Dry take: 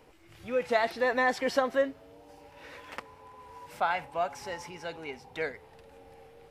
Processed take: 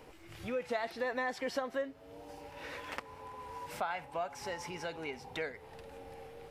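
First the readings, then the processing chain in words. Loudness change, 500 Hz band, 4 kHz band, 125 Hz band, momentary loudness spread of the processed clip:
-9.0 dB, -7.5 dB, -5.0 dB, -0.5 dB, 15 LU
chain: compressor 2.5:1, threshold -42 dBFS, peak gain reduction 14.5 dB; gain +3.5 dB

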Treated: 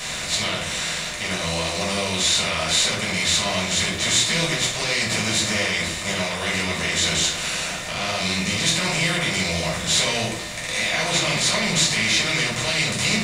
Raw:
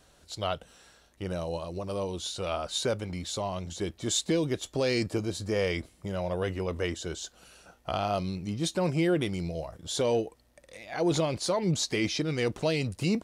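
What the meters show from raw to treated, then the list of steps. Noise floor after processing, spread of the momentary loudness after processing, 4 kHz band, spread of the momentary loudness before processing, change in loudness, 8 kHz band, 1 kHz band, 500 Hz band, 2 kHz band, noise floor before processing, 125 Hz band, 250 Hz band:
-29 dBFS, 6 LU, +16.0 dB, 9 LU, +10.0 dB, +15.5 dB, +8.0 dB, +1.0 dB, +17.0 dB, -62 dBFS, +4.0 dB, +2.5 dB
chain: per-bin compression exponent 0.4; graphic EQ 125/250/2000 Hz -4/-4/+6 dB; limiter -15.5 dBFS, peak gain reduction 9 dB; passive tone stack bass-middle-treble 5-5-5; shoebox room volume 470 m³, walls furnished, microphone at 5.8 m; gain +8 dB

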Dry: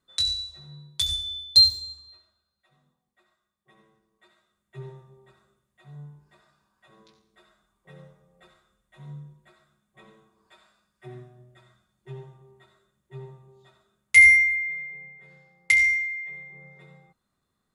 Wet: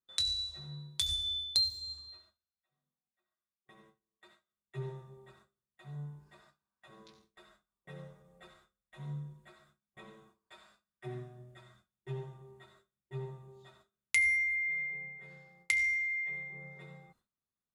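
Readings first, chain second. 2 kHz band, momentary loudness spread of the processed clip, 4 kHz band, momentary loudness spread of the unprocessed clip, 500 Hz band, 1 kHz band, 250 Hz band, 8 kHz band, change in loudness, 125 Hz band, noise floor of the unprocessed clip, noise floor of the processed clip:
-12.0 dB, 22 LU, -10.5 dB, 23 LU, 0.0 dB, -1.0 dB, n/a, -8.0 dB, -14.5 dB, -1.0 dB, -79 dBFS, under -85 dBFS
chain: gate with hold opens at -53 dBFS; compressor 3:1, threshold -32 dBFS, peak gain reduction 16 dB

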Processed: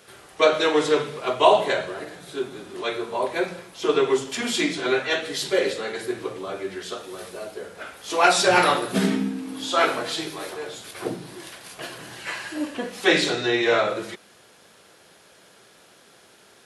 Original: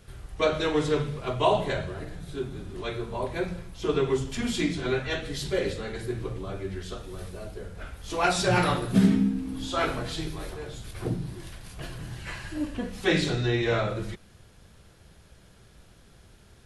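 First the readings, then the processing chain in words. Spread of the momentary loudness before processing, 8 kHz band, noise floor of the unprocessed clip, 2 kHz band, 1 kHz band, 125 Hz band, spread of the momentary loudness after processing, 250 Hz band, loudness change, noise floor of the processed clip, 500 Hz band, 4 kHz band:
15 LU, +7.5 dB, -55 dBFS, +7.5 dB, +7.5 dB, -8.0 dB, 18 LU, 0.0 dB, +5.0 dB, -54 dBFS, +6.0 dB, +7.5 dB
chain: HPF 370 Hz 12 dB/oct; gain +7.5 dB

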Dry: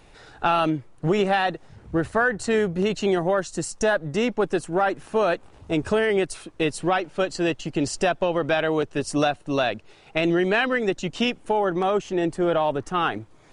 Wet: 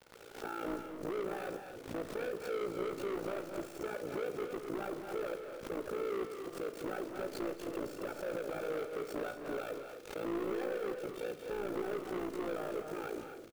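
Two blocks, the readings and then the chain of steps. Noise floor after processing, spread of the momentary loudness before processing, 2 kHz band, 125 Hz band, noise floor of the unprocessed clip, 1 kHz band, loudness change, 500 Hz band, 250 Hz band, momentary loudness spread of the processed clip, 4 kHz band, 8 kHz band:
-50 dBFS, 6 LU, -20.0 dB, -21.5 dB, -52 dBFS, -19.0 dB, -16.0 dB, -14.0 dB, -16.0 dB, 5 LU, -20.5 dB, -18.5 dB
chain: minimum comb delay 2.2 ms; HPF 330 Hz 12 dB/oct; in parallel at -1 dB: compressor, threshold -32 dBFS, peak gain reduction 12.5 dB; on the sum: limiter -17.5 dBFS, peak gain reduction 9 dB; running mean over 45 samples; bit-crush 9-bit; AM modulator 57 Hz, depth 95%; hard clip -37 dBFS, distortion -6 dB; on a send: loudspeakers at several distances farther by 74 m -10 dB, 89 m -9 dB; on the sum: Schroeder reverb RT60 0.47 s, combs from 26 ms, DRR 10.5 dB; backwards sustainer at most 110 dB/s; gain +2.5 dB

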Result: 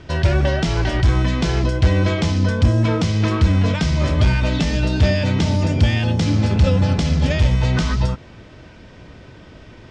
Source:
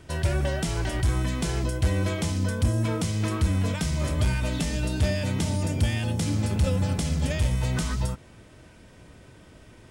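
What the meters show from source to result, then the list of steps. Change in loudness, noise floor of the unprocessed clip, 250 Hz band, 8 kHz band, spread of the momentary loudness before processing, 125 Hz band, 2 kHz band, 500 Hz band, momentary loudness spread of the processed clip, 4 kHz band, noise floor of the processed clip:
+8.5 dB, -51 dBFS, +8.5 dB, -1.0 dB, 3 LU, +8.5 dB, +8.5 dB, +8.5 dB, 3 LU, +8.0 dB, -42 dBFS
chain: LPF 5600 Hz 24 dB/oct; gain +8.5 dB

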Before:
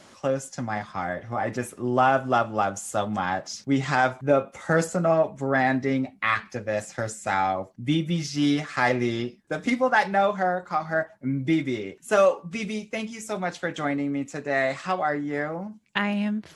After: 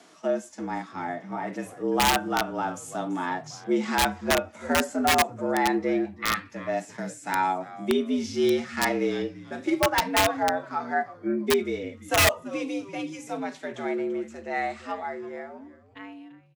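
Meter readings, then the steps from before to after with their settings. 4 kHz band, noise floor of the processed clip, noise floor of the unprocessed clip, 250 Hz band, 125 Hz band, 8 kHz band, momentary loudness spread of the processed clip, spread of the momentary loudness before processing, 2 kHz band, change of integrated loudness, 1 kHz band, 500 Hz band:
+5.5 dB, -51 dBFS, -54 dBFS, -2.0 dB, -8.5 dB, +5.0 dB, 12 LU, 9 LU, -1.5 dB, -1.0 dB, -1.5 dB, -2.5 dB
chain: ending faded out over 2.94 s; frequency-shifting echo 0.337 s, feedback 32%, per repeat -140 Hz, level -17.5 dB; frequency shift +81 Hz; harmonic-percussive split percussive -10 dB; wrapped overs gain 14 dB

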